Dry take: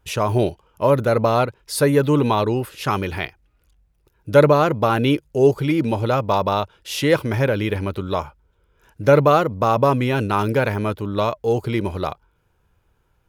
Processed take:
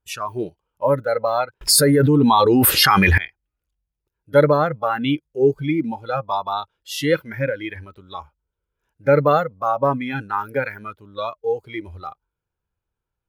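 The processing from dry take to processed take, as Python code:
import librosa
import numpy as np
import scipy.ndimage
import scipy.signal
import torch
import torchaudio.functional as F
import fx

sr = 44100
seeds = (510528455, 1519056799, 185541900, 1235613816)

y = fx.noise_reduce_blind(x, sr, reduce_db=18)
y = fx.env_flatten(y, sr, amount_pct=100, at=(1.61, 3.18))
y = y * librosa.db_to_amplitude(-1.0)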